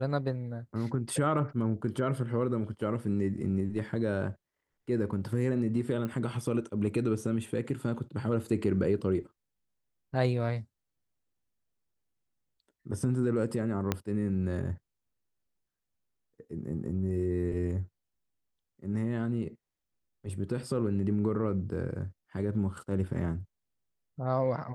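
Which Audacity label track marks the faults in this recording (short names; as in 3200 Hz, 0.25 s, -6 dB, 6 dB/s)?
6.050000	6.050000	pop -23 dBFS
13.920000	13.920000	pop -13 dBFS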